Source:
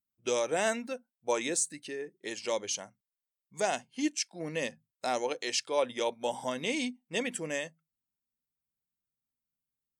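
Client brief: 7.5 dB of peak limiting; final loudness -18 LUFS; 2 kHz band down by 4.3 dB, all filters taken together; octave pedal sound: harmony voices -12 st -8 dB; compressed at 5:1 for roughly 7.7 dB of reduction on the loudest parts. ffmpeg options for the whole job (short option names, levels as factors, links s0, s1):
-filter_complex "[0:a]equalizer=f=2000:t=o:g=-5.5,acompressor=threshold=0.0224:ratio=5,alimiter=level_in=1.88:limit=0.0631:level=0:latency=1,volume=0.531,asplit=2[s0][s1];[s1]asetrate=22050,aresample=44100,atempo=2,volume=0.398[s2];[s0][s2]amix=inputs=2:normalize=0,volume=13.3"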